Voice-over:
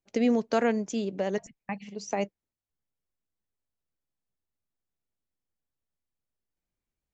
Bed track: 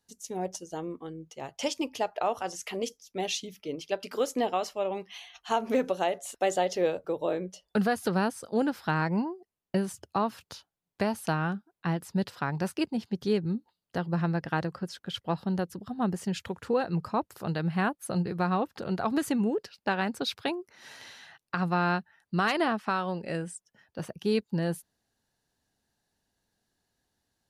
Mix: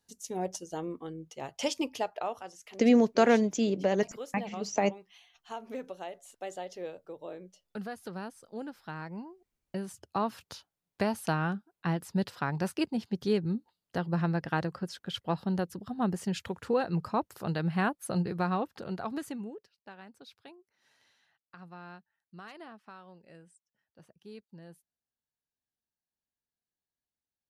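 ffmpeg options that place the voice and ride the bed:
ffmpeg -i stem1.wav -i stem2.wav -filter_complex "[0:a]adelay=2650,volume=2.5dB[link_01];[1:a]volume=11.5dB,afade=type=out:start_time=1.84:duration=0.69:silence=0.237137,afade=type=in:start_time=9.59:duration=0.79:silence=0.251189,afade=type=out:start_time=18.24:duration=1.45:silence=0.1[link_02];[link_01][link_02]amix=inputs=2:normalize=0" out.wav

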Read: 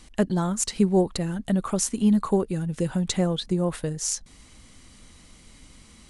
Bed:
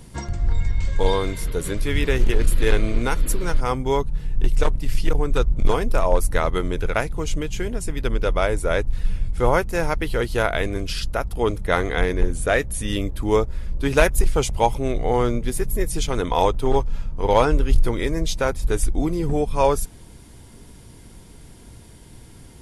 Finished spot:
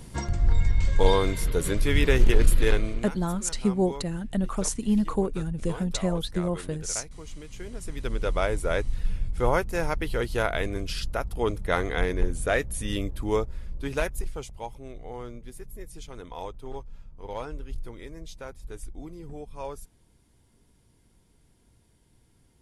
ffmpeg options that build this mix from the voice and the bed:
ffmpeg -i stem1.wav -i stem2.wav -filter_complex "[0:a]adelay=2850,volume=-3.5dB[link_01];[1:a]volume=11.5dB,afade=type=out:start_time=2.46:duration=0.64:silence=0.149624,afade=type=in:start_time=7.45:duration=0.93:silence=0.251189,afade=type=out:start_time=13.02:duration=1.52:silence=0.211349[link_02];[link_01][link_02]amix=inputs=2:normalize=0" out.wav

